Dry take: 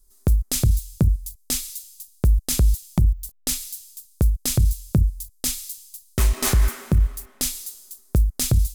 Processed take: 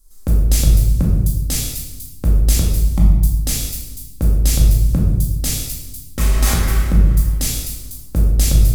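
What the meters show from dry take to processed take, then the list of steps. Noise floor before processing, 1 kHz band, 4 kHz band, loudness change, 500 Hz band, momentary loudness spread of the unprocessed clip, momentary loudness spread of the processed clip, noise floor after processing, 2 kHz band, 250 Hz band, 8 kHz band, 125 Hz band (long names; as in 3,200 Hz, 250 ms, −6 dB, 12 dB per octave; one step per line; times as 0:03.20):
−57 dBFS, +4.5 dB, +4.0 dB, +5.5 dB, +3.5 dB, 13 LU, 12 LU, −36 dBFS, +5.0 dB, +6.0 dB, +3.5 dB, +6.0 dB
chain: brickwall limiter −15 dBFS, peak gain reduction 5 dB
rectangular room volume 570 cubic metres, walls mixed, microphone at 2.2 metres
level +2.5 dB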